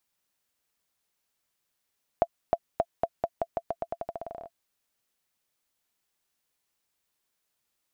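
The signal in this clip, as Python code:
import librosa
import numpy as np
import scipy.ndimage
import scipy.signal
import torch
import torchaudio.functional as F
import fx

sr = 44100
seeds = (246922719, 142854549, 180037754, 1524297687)

y = fx.bouncing_ball(sr, first_gap_s=0.31, ratio=0.87, hz=677.0, decay_ms=52.0, level_db=-10.0)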